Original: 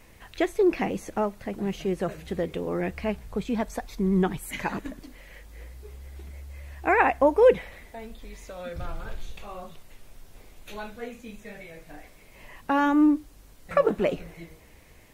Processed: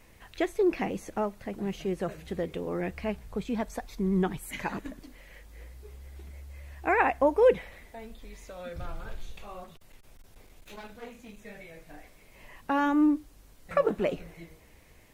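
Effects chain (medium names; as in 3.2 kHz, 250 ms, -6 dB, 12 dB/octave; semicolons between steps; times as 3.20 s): 9.64–11.39 s: one-sided clip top -44 dBFS; trim -3.5 dB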